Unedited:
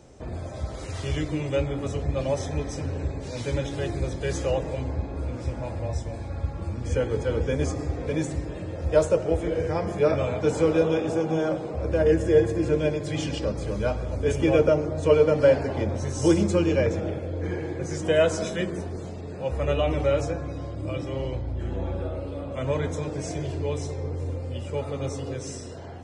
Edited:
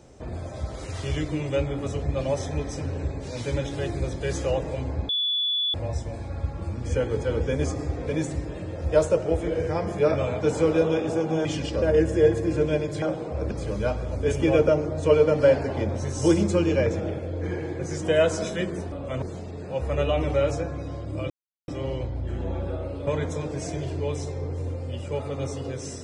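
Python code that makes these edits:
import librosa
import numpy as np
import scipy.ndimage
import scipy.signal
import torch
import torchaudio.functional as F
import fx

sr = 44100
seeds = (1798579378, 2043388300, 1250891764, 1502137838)

y = fx.edit(x, sr, fx.bleep(start_s=5.09, length_s=0.65, hz=3440.0, db=-22.0),
    fx.swap(start_s=11.45, length_s=0.49, other_s=13.14, other_length_s=0.37),
    fx.insert_silence(at_s=21.0, length_s=0.38),
    fx.move(start_s=22.39, length_s=0.3, to_s=18.92), tone=tone)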